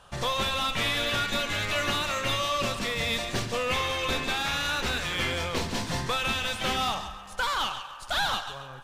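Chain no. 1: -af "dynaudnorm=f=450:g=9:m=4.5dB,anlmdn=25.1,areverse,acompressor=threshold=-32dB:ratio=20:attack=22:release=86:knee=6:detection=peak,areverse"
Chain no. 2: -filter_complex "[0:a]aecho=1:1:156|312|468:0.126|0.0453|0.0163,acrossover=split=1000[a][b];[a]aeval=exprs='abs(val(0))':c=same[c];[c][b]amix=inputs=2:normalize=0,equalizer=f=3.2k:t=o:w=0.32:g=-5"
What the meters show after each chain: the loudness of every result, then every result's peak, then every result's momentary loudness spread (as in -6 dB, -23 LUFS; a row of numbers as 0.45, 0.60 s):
-32.5, -30.0 LUFS; -19.5, -15.5 dBFS; 4, 4 LU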